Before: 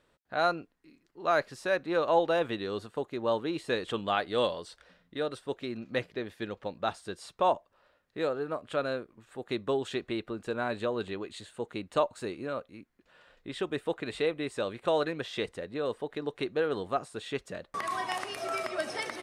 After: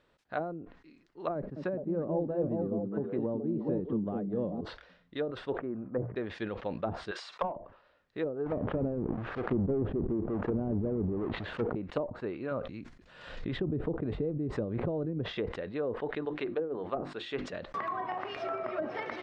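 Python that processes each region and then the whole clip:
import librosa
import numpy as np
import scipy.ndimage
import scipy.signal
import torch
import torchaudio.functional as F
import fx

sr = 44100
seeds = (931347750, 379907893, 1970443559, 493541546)

y = fx.chain(x, sr, fx.peak_eq(hz=180.0, db=6.5, octaves=1.0),
    fx.echo_stepped(ms=211, hz=220.0, octaves=1.4, feedback_pct=70, wet_db=0.0), at=(1.35, 4.61))
y = fx.chain(y, sr, fx.lowpass(hz=1300.0, slope=24),
    fx.hum_notches(base_hz=60, count=3), at=(5.58, 6.16))
y = fx.chain(y, sr, fx.highpass(hz=690.0, slope=12),
    fx.peak_eq(hz=1500.0, db=6.0, octaves=2.7),
    fx.clip_hard(threshold_db=-20.0), at=(7.11, 7.56))
y = fx.chain(y, sr, fx.halfwave_hold(),
    fx.lowpass(hz=1400.0, slope=6),
    fx.sustainer(db_per_s=31.0), at=(8.46, 11.75))
y = fx.chain(y, sr, fx.bass_treble(bass_db=8, treble_db=6),
    fx.pre_swell(db_per_s=62.0), at=(12.51, 15.38))
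y = fx.chain(y, sr, fx.peak_eq(hz=78.0, db=-10.0, octaves=2.6),
    fx.hum_notches(base_hz=50, count=7), at=(16.25, 17.53))
y = scipy.signal.sosfilt(scipy.signal.butter(2, 5100.0, 'lowpass', fs=sr, output='sos'), y)
y = fx.env_lowpass_down(y, sr, base_hz=340.0, full_db=-26.0)
y = fx.sustainer(y, sr, db_per_s=94.0)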